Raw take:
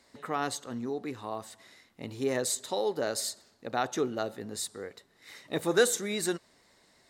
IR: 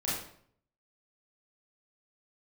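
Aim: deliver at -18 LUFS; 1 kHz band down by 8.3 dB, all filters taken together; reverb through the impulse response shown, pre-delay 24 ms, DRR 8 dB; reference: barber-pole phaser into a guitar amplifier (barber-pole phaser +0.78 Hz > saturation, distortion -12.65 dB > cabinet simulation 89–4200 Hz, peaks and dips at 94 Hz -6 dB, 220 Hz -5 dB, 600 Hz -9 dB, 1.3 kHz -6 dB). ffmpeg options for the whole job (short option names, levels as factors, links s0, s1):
-filter_complex "[0:a]equalizer=f=1000:t=o:g=-8,asplit=2[s0][s1];[1:a]atrim=start_sample=2205,adelay=24[s2];[s1][s2]afir=irnorm=-1:irlink=0,volume=0.188[s3];[s0][s3]amix=inputs=2:normalize=0,asplit=2[s4][s5];[s5]afreqshift=0.78[s6];[s4][s6]amix=inputs=2:normalize=1,asoftclip=threshold=0.0316,highpass=89,equalizer=f=94:t=q:w=4:g=-6,equalizer=f=220:t=q:w=4:g=-5,equalizer=f=600:t=q:w=4:g=-9,equalizer=f=1300:t=q:w=4:g=-6,lowpass=f=4200:w=0.5412,lowpass=f=4200:w=1.3066,volume=15.8"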